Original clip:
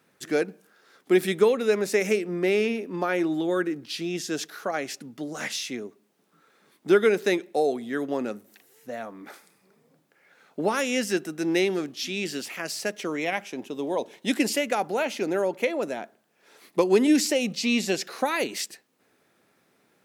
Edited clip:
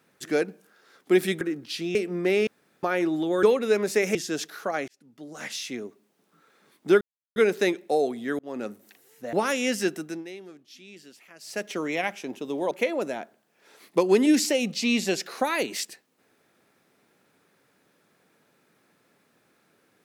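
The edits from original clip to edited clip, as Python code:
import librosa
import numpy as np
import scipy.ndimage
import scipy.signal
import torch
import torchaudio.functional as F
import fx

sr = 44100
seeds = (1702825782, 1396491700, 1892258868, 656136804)

y = fx.edit(x, sr, fx.swap(start_s=1.41, length_s=0.72, other_s=3.61, other_length_s=0.54),
    fx.room_tone_fill(start_s=2.65, length_s=0.36),
    fx.fade_in_span(start_s=4.88, length_s=0.95),
    fx.insert_silence(at_s=7.01, length_s=0.35),
    fx.fade_in_span(start_s=8.04, length_s=0.29),
    fx.cut(start_s=8.98, length_s=1.64),
    fx.fade_down_up(start_s=11.28, length_s=1.66, db=-17.5, fade_s=0.25),
    fx.cut(start_s=14.0, length_s=1.52), tone=tone)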